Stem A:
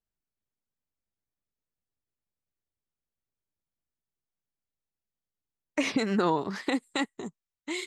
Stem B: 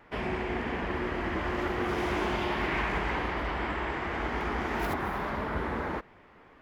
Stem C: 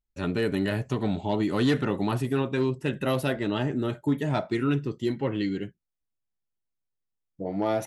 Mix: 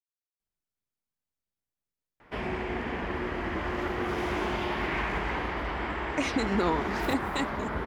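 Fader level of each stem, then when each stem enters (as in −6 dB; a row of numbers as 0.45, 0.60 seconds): −2.0 dB, −0.5 dB, muted; 0.40 s, 2.20 s, muted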